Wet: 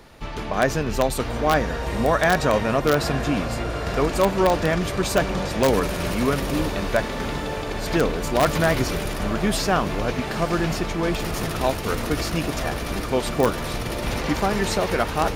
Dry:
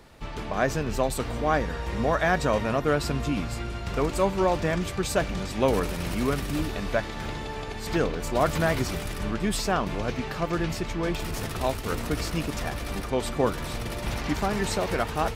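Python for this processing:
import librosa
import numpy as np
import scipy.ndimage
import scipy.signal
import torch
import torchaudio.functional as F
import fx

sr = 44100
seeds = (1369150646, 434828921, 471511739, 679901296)

p1 = fx.peak_eq(x, sr, hz=77.0, db=-2.0, octaves=2.3)
p2 = fx.notch(p1, sr, hz=7900.0, q=12.0)
p3 = fx.echo_diffused(p2, sr, ms=921, feedback_pct=72, wet_db=-12.5)
p4 = (np.mod(10.0 ** (12.5 / 20.0) * p3 + 1.0, 2.0) - 1.0) / 10.0 ** (12.5 / 20.0)
y = p3 + (p4 * librosa.db_to_amplitude(-3.0))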